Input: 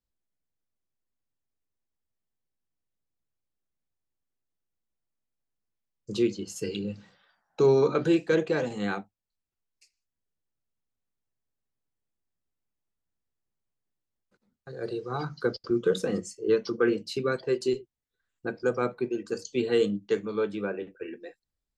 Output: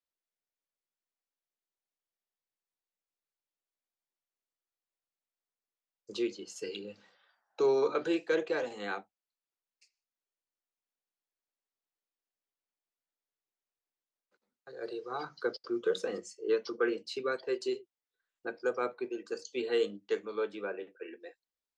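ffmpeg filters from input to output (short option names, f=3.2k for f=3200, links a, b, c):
-filter_complex "[0:a]acrossover=split=320 7700:gain=0.0891 1 0.178[a][b][c];[a][b][c]amix=inputs=3:normalize=0,volume=-3.5dB"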